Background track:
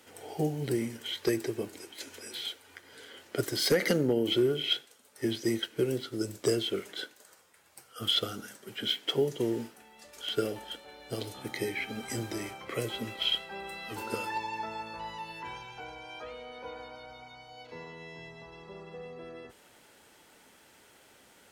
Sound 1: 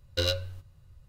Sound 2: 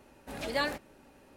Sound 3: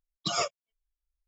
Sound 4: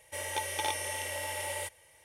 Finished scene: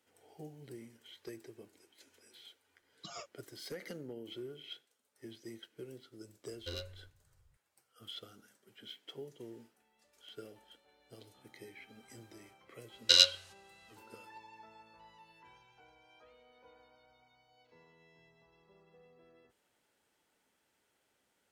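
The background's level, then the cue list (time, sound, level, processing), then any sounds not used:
background track -19 dB
2.78 s: add 3 -17.5 dB + gain riding
6.49 s: add 1 -15.5 dB
12.92 s: add 1 -2.5 dB + frequency weighting ITU-R 468
not used: 2, 4

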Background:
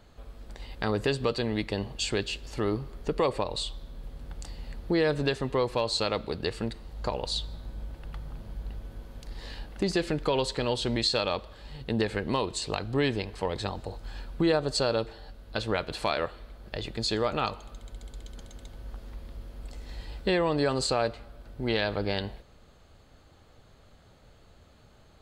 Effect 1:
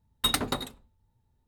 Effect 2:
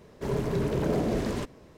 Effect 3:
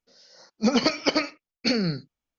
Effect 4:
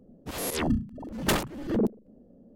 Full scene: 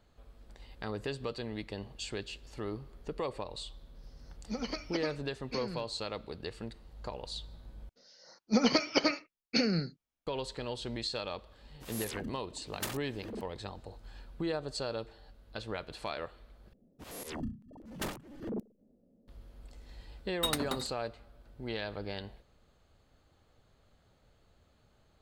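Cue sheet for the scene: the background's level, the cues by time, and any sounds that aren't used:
background -10 dB
3.87 s: add 3 -16 dB
7.89 s: replace with 3 -5 dB
11.54 s: add 4 -14 dB + tilt EQ +2 dB/octave
16.73 s: replace with 4 -12.5 dB
20.19 s: add 1 -6.5 dB
not used: 2

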